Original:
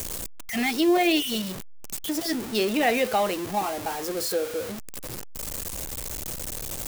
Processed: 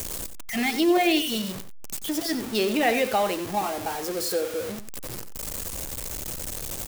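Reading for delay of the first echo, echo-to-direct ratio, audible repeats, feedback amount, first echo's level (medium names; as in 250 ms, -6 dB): 91 ms, -12.0 dB, 1, no regular repeats, -12.0 dB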